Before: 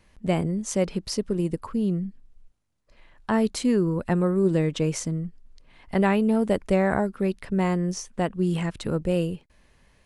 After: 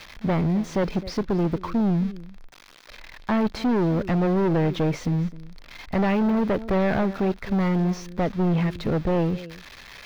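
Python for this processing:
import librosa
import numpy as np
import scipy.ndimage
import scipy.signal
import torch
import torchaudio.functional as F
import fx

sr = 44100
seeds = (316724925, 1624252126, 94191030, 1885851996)

p1 = x + 0.5 * 10.0 ** (-24.5 / 20.0) * np.diff(np.sign(x), prepend=np.sign(x[:1]))
p2 = fx.notch(p1, sr, hz=2900.0, q=11.0)
p3 = p2 + fx.echo_single(p2, sr, ms=260, db=-20.5, dry=0)
p4 = np.clip(10.0 ** (25.0 / 20.0) * p3, -1.0, 1.0) / 10.0 ** (25.0 / 20.0)
p5 = fx.air_absorb(p4, sr, metres=290.0)
y = p5 * 10.0 ** (6.5 / 20.0)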